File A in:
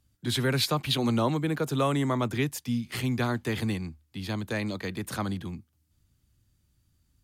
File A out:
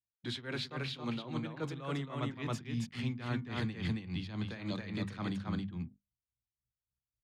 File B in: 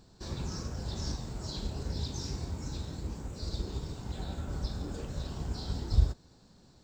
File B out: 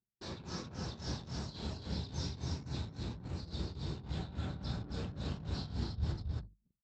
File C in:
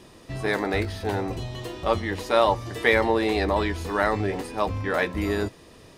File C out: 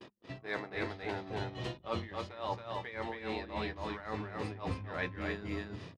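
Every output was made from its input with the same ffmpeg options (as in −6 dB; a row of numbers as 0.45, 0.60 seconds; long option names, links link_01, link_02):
-af "highpass=130,lowpass=3800,highshelf=frequency=2100:gain=6,aecho=1:1:273:0.668,areverse,acompressor=threshold=-32dB:ratio=6,areverse,asubboost=boost=3.5:cutoff=190,flanger=delay=10:depth=3.7:regen=-79:speed=0.38:shape=triangular,tremolo=f=3.6:d=0.77,agate=range=-11dB:threshold=-58dB:ratio=16:detection=peak,bandreject=frequency=50:width_type=h:width=6,bandreject=frequency=100:width_type=h:width=6,bandreject=frequency=150:width_type=h:width=6,bandreject=frequency=200:width_type=h:width=6,bandreject=frequency=250:width_type=h:width=6,anlmdn=0.0000631,volume=4dB"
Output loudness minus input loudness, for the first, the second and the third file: −9.5, −4.5, −14.0 LU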